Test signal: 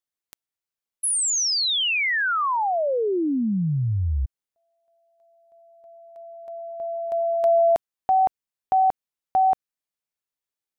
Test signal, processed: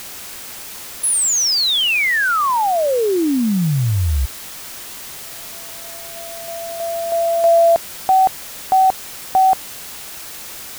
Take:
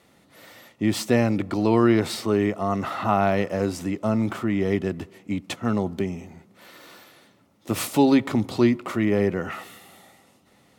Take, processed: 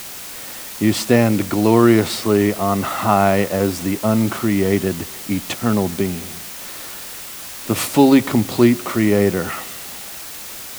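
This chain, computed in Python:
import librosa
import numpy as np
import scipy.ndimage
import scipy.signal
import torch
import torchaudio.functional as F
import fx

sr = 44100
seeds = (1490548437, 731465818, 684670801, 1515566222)

y = fx.dmg_noise_colour(x, sr, seeds[0], colour='white', level_db=-39.0)
y = F.gain(torch.from_numpy(y), 6.0).numpy()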